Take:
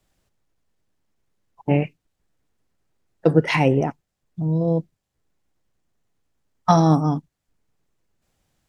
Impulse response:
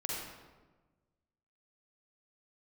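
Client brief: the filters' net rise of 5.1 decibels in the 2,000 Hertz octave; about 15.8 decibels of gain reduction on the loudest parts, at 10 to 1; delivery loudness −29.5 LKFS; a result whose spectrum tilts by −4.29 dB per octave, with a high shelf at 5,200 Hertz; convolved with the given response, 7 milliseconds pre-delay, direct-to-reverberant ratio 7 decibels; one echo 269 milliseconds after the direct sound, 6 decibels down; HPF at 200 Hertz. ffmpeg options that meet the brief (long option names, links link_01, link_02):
-filter_complex "[0:a]highpass=200,equalizer=frequency=2000:width_type=o:gain=7,highshelf=frequency=5200:gain=-8,acompressor=threshold=-27dB:ratio=10,aecho=1:1:269:0.501,asplit=2[link_01][link_02];[1:a]atrim=start_sample=2205,adelay=7[link_03];[link_02][link_03]afir=irnorm=-1:irlink=0,volume=-10dB[link_04];[link_01][link_04]amix=inputs=2:normalize=0,volume=3dB"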